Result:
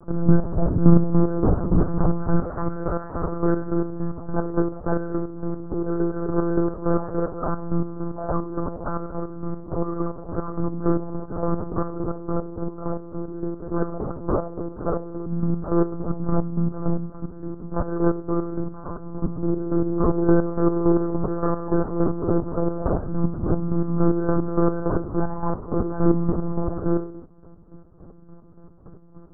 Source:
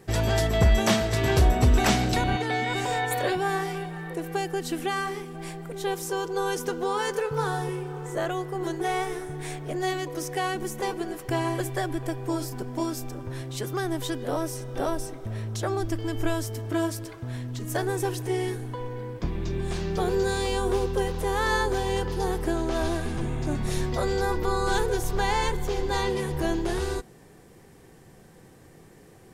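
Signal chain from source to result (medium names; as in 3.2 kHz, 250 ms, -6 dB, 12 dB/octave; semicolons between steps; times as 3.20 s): comb filter that takes the minimum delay 4.6 ms; peak limiter -19 dBFS, peak gain reduction 9 dB; bass shelf 140 Hz -10 dB; reverberation RT60 0.45 s, pre-delay 3 ms, DRR -5.5 dB; monotone LPC vocoder at 8 kHz 170 Hz; square tremolo 3.5 Hz, depth 60%, duty 40%; elliptic low-pass 1.3 kHz, stop band 60 dB; trim -3.5 dB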